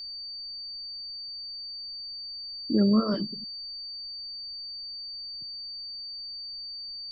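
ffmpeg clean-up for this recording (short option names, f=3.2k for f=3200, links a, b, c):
-af "adeclick=t=4,bandreject=f=4.6k:w=30,agate=range=-21dB:threshold=-31dB"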